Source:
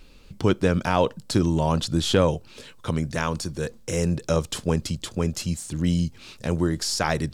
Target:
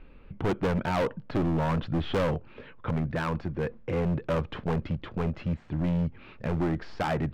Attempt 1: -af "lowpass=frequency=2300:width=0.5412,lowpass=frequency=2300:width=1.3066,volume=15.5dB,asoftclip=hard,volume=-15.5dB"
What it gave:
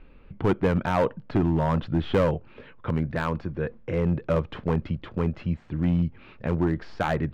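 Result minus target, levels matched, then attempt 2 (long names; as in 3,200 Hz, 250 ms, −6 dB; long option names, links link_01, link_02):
gain into a clipping stage and back: distortion −7 dB
-af "lowpass=frequency=2300:width=0.5412,lowpass=frequency=2300:width=1.3066,volume=23dB,asoftclip=hard,volume=-23dB"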